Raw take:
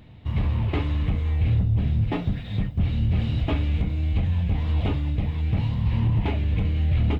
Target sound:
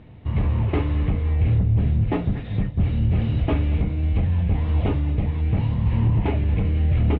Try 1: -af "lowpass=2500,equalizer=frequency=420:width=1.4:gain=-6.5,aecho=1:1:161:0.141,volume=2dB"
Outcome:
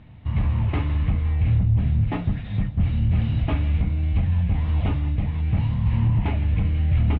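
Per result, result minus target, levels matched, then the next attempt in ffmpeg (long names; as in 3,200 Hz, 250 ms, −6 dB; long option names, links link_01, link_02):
500 Hz band −7.0 dB; echo 73 ms early
-af "lowpass=2500,equalizer=frequency=420:width=1.4:gain=3.5,aecho=1:1:161:0.141,volume=2dB"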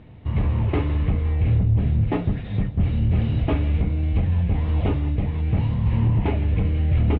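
echo 73 ms early
-af "lowpass=2500,equalizer=frequency=420:width=1.4:gain=3.5,aecho=1:1:234:0.141,volume=2dB"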